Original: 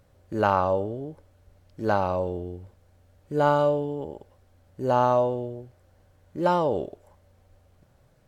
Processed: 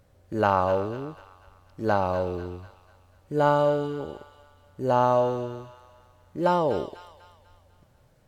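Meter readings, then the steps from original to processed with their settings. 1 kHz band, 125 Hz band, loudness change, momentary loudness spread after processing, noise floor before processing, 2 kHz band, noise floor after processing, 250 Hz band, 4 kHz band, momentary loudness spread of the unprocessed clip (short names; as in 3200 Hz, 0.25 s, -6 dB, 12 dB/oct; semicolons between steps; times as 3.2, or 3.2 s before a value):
0.0 dB, 0.0 dB, 0.0 dB, 18 LU, -61 dBFS, +0.5 dB, -60 dBFS, 0.0 dB, +1.0 dB, 18 LU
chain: thin delay 0.247 s, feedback 46%, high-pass 1700 Hz, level -6.5 dB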